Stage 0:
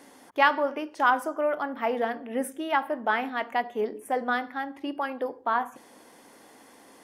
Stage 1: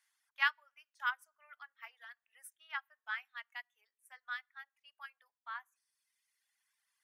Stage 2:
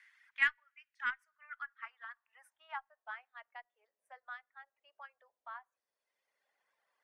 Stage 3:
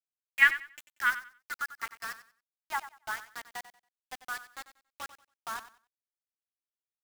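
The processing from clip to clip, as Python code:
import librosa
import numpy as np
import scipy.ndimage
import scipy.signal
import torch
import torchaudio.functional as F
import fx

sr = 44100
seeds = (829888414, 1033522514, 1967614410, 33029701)

y1 = scipy.signal.sosfilt(scipy.signal.butter(4, 1400.0, 'highpass', fs=sr, output='sos'), x)
y1 = fx.dereverb_blind(y1, sr, rt60_s=1.6)
y1 = fx.upward_expand(y1, sr, threshold_db=-53.0, expansion=1.5)
y1 = y1 * librosa.db_to_amplitude(-5.0)
y2 = fx.filter_sweep_bandpass(y1, sr, from_hz=2000.0, to_hz=560.0, start_s=1.2, end_s=3.26, q=3.3)
y2 = fx.cheby_harmonics(y2, sr, harmonics=(6,), levels_db=(-36,), full_scale_db=-20.5)
y2 = fx.band_squash(y2, sr, depth_pct=40)
y2 = y2 * librosa.db_to_amplitude(10.5)
y3 = fx.quant_dither(y2, sr, seeds[0], bits=8, dither='none')
y3 = fx.echo_feedback(y3, sr, ms=93, feedback_pct=24, wet_db=-14.0)
y3 = y3 * librosa.db_to_amplitude(8.5)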